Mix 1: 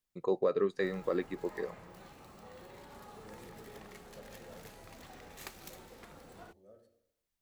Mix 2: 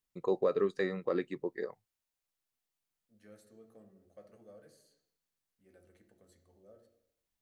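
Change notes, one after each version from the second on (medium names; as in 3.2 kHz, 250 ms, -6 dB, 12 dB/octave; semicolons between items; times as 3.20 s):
background: muted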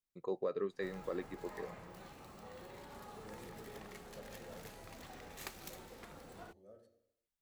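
first voice -7.5 dB; background: unmuted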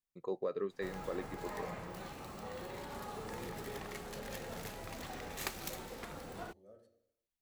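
background +7.0 dB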